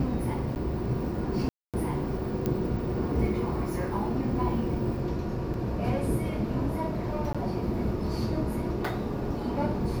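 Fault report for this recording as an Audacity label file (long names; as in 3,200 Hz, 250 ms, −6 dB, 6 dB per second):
0.550000	0.560000	drop-out 9.8 ms
1.490000	1.740000	drop-out 247 ms
2.460000	2.460000	click −15 dBFS
5.540000	5.540000	drop-out 2 ms
7.330000	7.350000	drop-out 16 ms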